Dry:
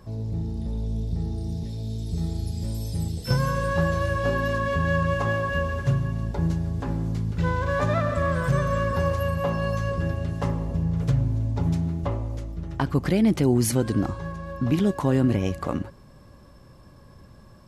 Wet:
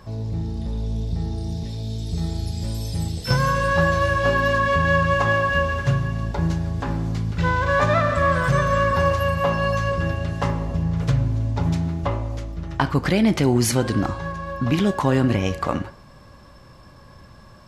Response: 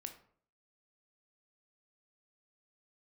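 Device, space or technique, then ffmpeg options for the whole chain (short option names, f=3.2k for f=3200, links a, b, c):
filtered reverb send: -filter_complex "[0:a]asplit=2[a][b];[b]highpass=590,lowpass=7.6k[c];[1:a]atrim=start_sample=2205[d];[c][d]afir=irnorm=-1:irlink=0,volume=4dB[e];[a][e]amix=inputs=2:normalize=0,volume=2.5dB"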